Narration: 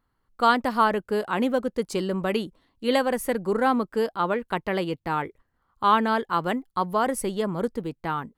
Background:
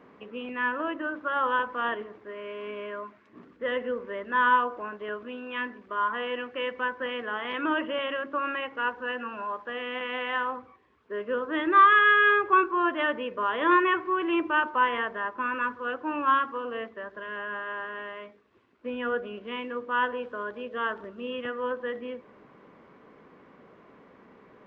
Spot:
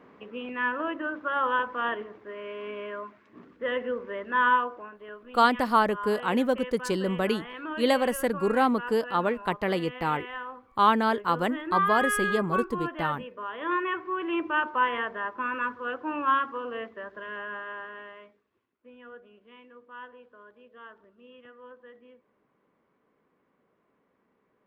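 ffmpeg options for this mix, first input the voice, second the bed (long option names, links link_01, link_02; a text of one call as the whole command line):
ffmpeg -i stem1.wav -i stem2.wav -filter_complex "[0:a]adelay=4950,volume=-1dB[link_01];[1:a]volume=7.5dB,afade=type=out:start_time=4.48:duration=0.44:silence=0.375837,afade=type=in:start_time=13.57:duration=1.14:silence=0.421697,afade=type=out:start_time=17.29:duration=1.48:silence=0.149624[link_02];[link_01][link_02]amix=inputs=2:normalize=0" out.wav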